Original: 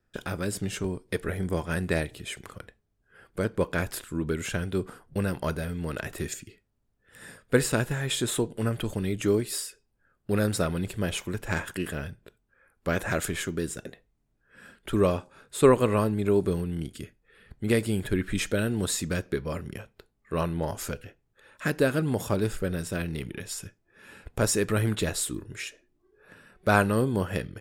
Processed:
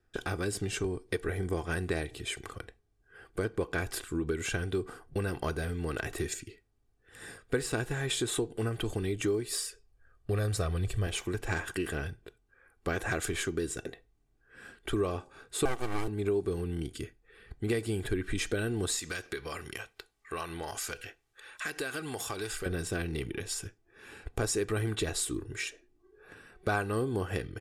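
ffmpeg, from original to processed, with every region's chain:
ffmpeg -i in.wav -filter_complex "[0:a]asettb=1/sr,asplit=3[link_01][link_02][link_03];[link_01]atrim=end=9.464[link_04];[link_02]atrim=start=9.46:end=11.07,asetpts=PTS-STARTPTS,afade=type=in:duration=0.004:curve=qsin,afade=type=out:start_time=1.606:duration=0.004:curve=qsin,asubboost=boost=5.5:cutoff=140,aecho=1:1:1.7:0.33,atrim=end_sample=71001[link_05];[link_03]atrim=start=11.066[link_06];[link_04][link_05]acrossfade=duration=0.004:curve1=hsin:curve2=qsin[link_07];[link_07][link_06]acrossfade=duration=0.004:curve1=qsin:curve2=hsin,asettb=1/sr,asplit=3[link_08][link_09][link_10];[link_08]atrim=end=15.654[link_11];[link_09]atrim=start=15.65:end=16.08,asetpts=PTS-STARTPTS,afade=type=in:duration=0.004:curve=qsin,afade=type=out:start_time=0.426:duration=0.004:curve=qsin,acrusher=bits=6:mode=log:mix=0:aa=0.000001,aecho=1:1:1:0.61,atrim=end_sample=18963,aeval=exprs='abs(val(0))':channel_layout=same[link_12];[link_10]atrim=start=16.076[link_13];[link_11][link_12]acrossfade=duration=0.004:curve1=hsin:curve2=qsin[link_14];[link_14][link_13]acrossfade=duration=0.004:curve1=qsin:curve2=hsin,asettb=1/sr,asplit=3[link_15][link_16][link_17];[link_15]atrim=end=18.994[link_18];[link_16]atrim=start=18.99:end=22.66,asetpts=PTS-STARTPTS,afade=type=in:duration=0.004:curve=qsin,afade=type=out:start_time=3.666:duration=0.004:curve=qsin,tiltshelf=frequency=680:gain=-8.5,acompressor=threshold=-35dB:ratio=3:attack=3.2:release=140:knee=1:detection=peak[link_19];[link_17]atrim=start=22.656[link_20];[link_18][link_19]acrossfade=duration=0.004:curve1=hsin:curve2=qsin[link_21];[link_21][link_20]acrossfade=duration=0.004:curve1=qsin:curve2=hsin,lowpass=11000,aecho=1:1:2.6:0.51,acompressor=threshold=-29dB:ratio=3" out.wav

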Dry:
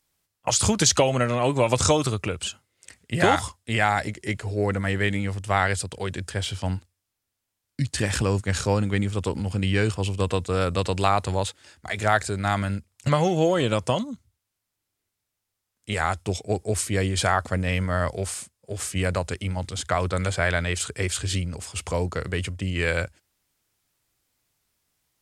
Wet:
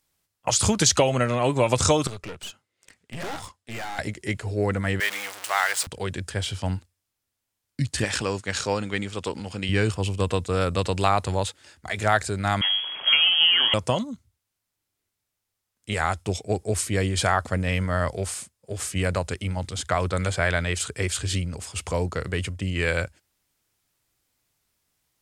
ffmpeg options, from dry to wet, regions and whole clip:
ffmpeg -i in.wav -filter_complex "[0:a]asettb=1/sr,asplit=3[link_01][link_02][link_03];[link_01]atrim=end=2.074[link_04];[link_02]atrim=start=2.07:end=3.99,asetpts=PTS-STARTPTS,afade=type=in:duration=0.004:curve=qsin,afade=type=out:start_time=1.916:duration=0.004:curve=qsin,highpass=frequency=150:poles=1,highshelf=frequency=8500:gain=-10,aeval=exprs='(tanh(35.5*val(0)+0.75)-tanh(0.75))/35.5':channel_layout=same[link_05];[link_03]atrim=start=3.986[link_06];[link_04][link_05]acrossfade=duration=0.004:curve1=hsin:curve2=qsin[link_07];[link_07][link_06]acrossfade=duration=0.004:curve1=qsin:curve2=hsin,asettb=1/sr,asplit=3[link_08][link_09][link_10];[link_08]atrim=end=5.004[link_11];[link_09]atrim=start=5:end=5.87,asetpts=PTS-STARTPTS,afade=type=in:duration=0.004:curve=qsin,afade=type=out:start_time=0.866:duration=0.004:curve=qsin,aeval=exprs='val(0)+0.5*0.0631*sgn(val(0))':channel_layout=same,highpass=930[link_12];[link_10]atrim=start=5.866[link_13];[link_11][link_12]acrossfade=duration=0.004:curve1=hsin:curve2=qsin[link_14];[link_14][link_13]acrossfade=duration=0.004:curve1=qsin:curve2=hsin,asettb=1/sr,asplit=3[link_15][link_16][link_17];[link_15]atrim=end=8.044[link_18];[link_16]atrim=start=8.04:end=9.69,asetpts=PTS-STARTPTS,afade=type=in:duration=0.004:curve=qsin,afade=type=out:start_time=1.646:duration=0.004:curve=qsin,lowpass=4800,deesser=0.4,aemphasis=mode=production:type=bsi[link_19];[link_17]atrim=start=9.686[link_20];[link_18][link_19]acrossfade=duration=0.004:curve1=hsin:curve2=qsin[link_21];[link_21][link_20]acrossfade=duration=0.004:curve1=qsin:curve2=hsin,asettb=1/sr,asplit=3[link_22][link_23][link_24];[link_22]atrim=end=12.614[link_25];[link_23]atrim=start=12.61:end=13.74,asetpts=PTS-STARTPTS,afade=type=in:duration=0.004:curve=qsin,afade=type=out:start_time=1.126:duration=0.004:curve=qsin,aeval=exprs='val(0)+0.5*0.0531*sgn(val(0))':channel_layout=same,lowpass=frequency=2900:width_type=q:width=0.5098,lowpass=frequency=2900:width_type=q:width=0.6013,lowpass=frequency=2900:width_type=q:width=0.9,lowpass=frequency=2900:width_type=q:width=2.563,afreqshift=-3400,lowshelf=frequency=170:gain=-8[link_26];[link_24]atrim=start=13.736[link_27];[link_25][link_26]acrossfade=duration=0.004:curve1=hsin:curve2=qsin[link_28];[link_28][link_27]acrossfade=duration=0.004:curve1=qsin:curve2=hsin" out.wav

